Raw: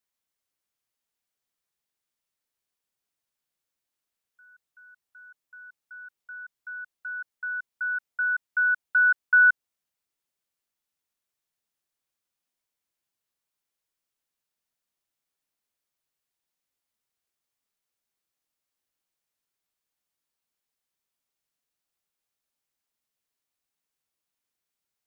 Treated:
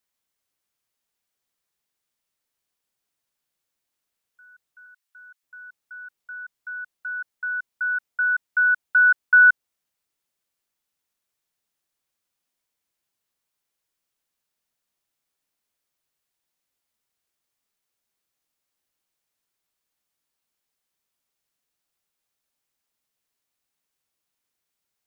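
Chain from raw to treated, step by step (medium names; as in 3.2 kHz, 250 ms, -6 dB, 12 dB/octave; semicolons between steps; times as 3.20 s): 4.86–5.43 s: high-pass 1.2 kHz; trim +4 dB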